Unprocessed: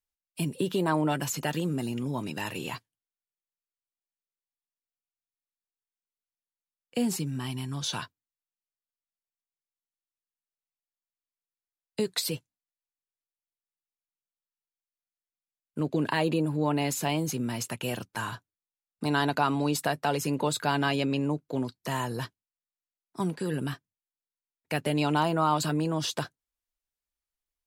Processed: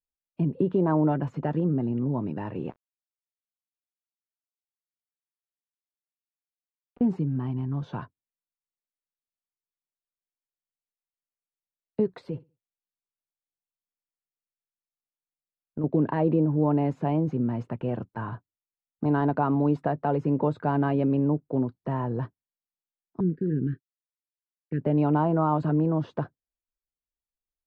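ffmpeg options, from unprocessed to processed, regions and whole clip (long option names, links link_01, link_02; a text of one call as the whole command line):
ffmpeg -i in.wav -filter_complex "[0:a]asettb=1/sr,asplit=3[link_01][link_02][link_03];[link_01]atrim=end=2.704[link_04];[link_02]atrim=start=2.7:end=7.01,asetpts=PTS-STARTPTS,afade=type=in:duration=0.004:curve=qsin,afade=type=out:start_time=4.306:duration=0.004:curve=qsin,acompressor=threshold=-40dB:ratio=10:attack=3.2:release=140:knee=1:detection=peak,bass=frequency=250:gain=-8,treble=frequency=4000:gain=-4,aeval=exprs='val(0)*gte(abs(val(0)),0.0119)':channel_layout=same[link_05];[link_03]atrim=start=7.006[link_06];[link_04][link_05]acrossfade=duration=0.004:curve1=hsin:curve2=qsin[link_07];[link_07][link_06]acrossfade=duration=0.004:curve1=qsin:curve2=hsin,asettb=1/sr,asplit=3[link_08][link_09][link_10];[link_08]atrim=end=12.274[link_11];[link_09]atrim=start=12.27:end=15.84,asetpts=PTS-STARTPTS,afade=type=in:duration=0.004:curve=qsin,afade=type=out:start_time=3.566:duration=0.004:curve=qsin,acompressor=threshold=-32dB:ratio=2.5:attack=3.2:release=140:knee=1:detection=peak,aecho=1:1:65|130|195:0.1|0.04|0.016,atrim=end_sample=157437[link_12];[link_10]atrim=start=15.836[link_13];[link_11][link_12]acrossfade=duration=0.004:curve1=hsin:curve2=qsin[link_14];[link_14][link_13]acrossfade=duration=0.004:curve1=qsin:curve2=hsin,asettb=1/sr,asplit=3[link_15][link_16][link_17];[link_15]atrim=end=23.204[link_18];[link_16]atrim=start=23.2:end=24.81,asetpts=PTS-STARTPTS,afade=type=in:duration=0.004:curve=qsin,afade=type=out:start_time=1.606:duration=0.004:curve=qsin,highshelf=frequency=2000:width_type=q:width=1.5:gain=-7,agate=range=-33dB:threshold=-41dB:ratio=3:release=100:detection=peak,asuperstop=centerf=840:order=8:qfactor=0.67[link_19];[link_17]atrim=start=24.806[link_20];[link_18][link_19]acrossfade=duration=0.004:curve1=hsin:curve2=qsin[link_21];[link_21][link_20]acrossfade=duration=0.004:curve1=qsin:curve2=hsin,agate=range=-8dB:threshold=-43dB:ratio=16:detection=peak,lowpass=1400,tiltshelf=frequency=1100:gain=6.5,volume=-1dB" out.wav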